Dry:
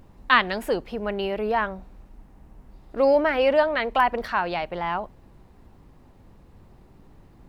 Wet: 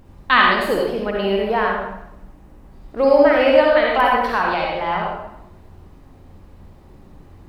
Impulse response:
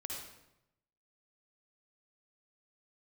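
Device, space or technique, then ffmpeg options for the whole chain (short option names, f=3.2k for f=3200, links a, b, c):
bathroom: -filter_complex "[1:a]atrim=start_sample=2205[a];[0:a][a]afir=irnorm=-1:irlink=0,volume=7dB"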